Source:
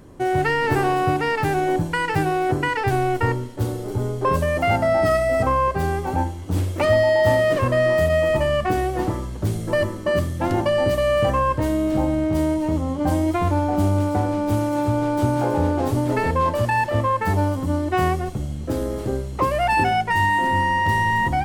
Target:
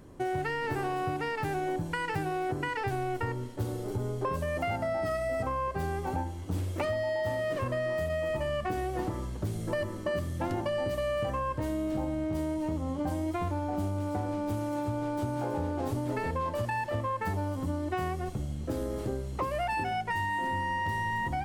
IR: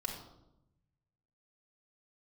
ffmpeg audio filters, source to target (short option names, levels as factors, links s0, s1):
-af "acompressor=threshold=0.0794:ratio=6,volume=0.501"